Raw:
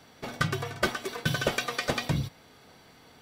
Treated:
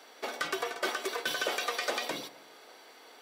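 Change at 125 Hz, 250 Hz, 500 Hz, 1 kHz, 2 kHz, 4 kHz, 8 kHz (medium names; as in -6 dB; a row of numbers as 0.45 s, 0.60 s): -29.5 dB, -10.0 dB, -2.0 dB, -1.0 dB, -2.5 dB, -0.5 dB, -0.5 dB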